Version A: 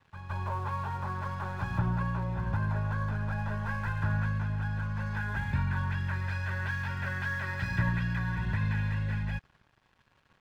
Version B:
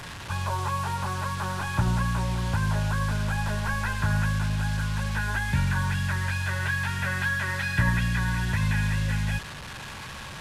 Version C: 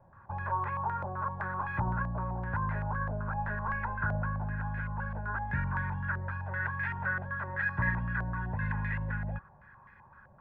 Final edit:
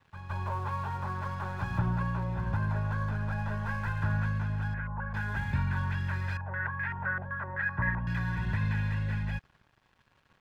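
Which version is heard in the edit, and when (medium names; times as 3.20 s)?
A
4.74–5.14 s: from C
6.37–8.07 s: from C
not used: B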